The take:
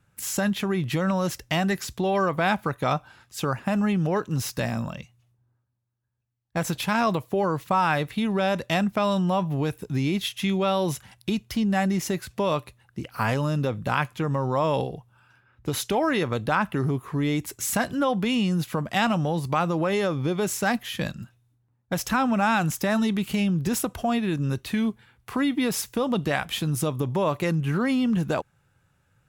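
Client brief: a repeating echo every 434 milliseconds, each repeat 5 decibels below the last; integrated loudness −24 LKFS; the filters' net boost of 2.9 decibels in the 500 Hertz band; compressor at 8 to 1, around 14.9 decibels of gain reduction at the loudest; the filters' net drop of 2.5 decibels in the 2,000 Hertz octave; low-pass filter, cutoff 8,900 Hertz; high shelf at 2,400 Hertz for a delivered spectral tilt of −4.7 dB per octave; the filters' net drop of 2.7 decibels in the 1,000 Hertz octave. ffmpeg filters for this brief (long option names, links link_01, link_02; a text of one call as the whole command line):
ffmpeg -i in.wav -af "lowpass=8900,equalizer=frequency=500:width_type=o:gain=5,equalizer=frequency=1000:width_type=o:gain=-5.5,equalizer=frequency=2000:width_type=o:gain=-4.5,highshelf=frequency=2400:gain=5.5,acompressor=threshold=-35dB:ratio=8,aecho=1:1:434|868|1302|1736|2170|2604|3038:0.562|0.315|0.176|0.0988|0.0553|0.031|0.0173,volume=13dB" out.wav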